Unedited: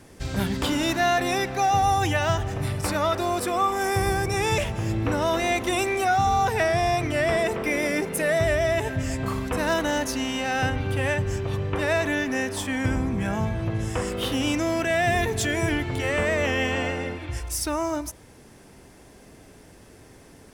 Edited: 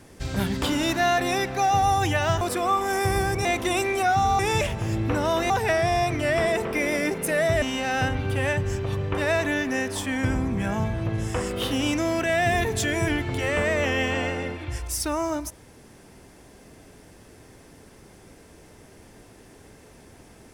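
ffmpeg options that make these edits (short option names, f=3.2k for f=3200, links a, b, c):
-filter_complex "[0:a]asplit=6[a][b][c][d][e][f];[a]atrim=end=2.412[g];[b]atrim=start=3.318:end=4.362[h];[c]atrim=start=5.468:end=6.412[i];[d]atrim=start=4.358:end=5.472[j];[e]atrim=start=6.408:end=8.532[k];[f]atrim=start=10.228[l];[g][h]acrossfade=d=0.004:c1=hsin:c2=hsin[m];[m][i]acrossfade=d=0.004:c1=hsin:c2=hsin[n];[n][j]acrossfade=d=0.004:c1=hsin:c2=hsin[o];[o][k]acrossfade=d=0.004:c1=hsin:c2=hsin[p];[p][l]acrossfade=d=0.004:c1=hsin:c2=hsin"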